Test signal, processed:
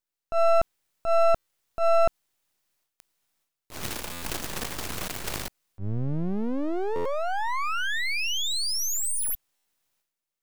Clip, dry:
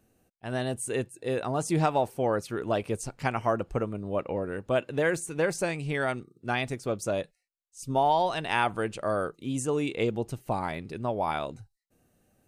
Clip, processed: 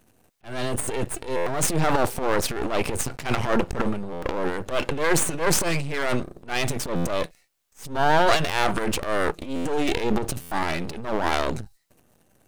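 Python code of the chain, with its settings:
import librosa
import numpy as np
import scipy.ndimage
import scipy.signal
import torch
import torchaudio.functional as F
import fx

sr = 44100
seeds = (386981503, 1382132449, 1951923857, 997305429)

y = np.maximum(x, 0.0)
y = fx.transient(y, sr, attack_db=-10, sustain_db=12)
y = fx.buffer_glitch(y, sr, at_s=(1.36, 4.12, 6.95, 9.55, 10.41), block=512, repeats=8)
y = y * librosa.db_to_amplitude(9.0)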